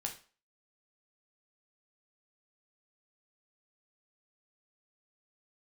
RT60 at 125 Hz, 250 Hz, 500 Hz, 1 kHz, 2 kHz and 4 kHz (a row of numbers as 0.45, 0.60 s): 0.30, 0.35, 0.40, 0.40, 0.35, 0.35 s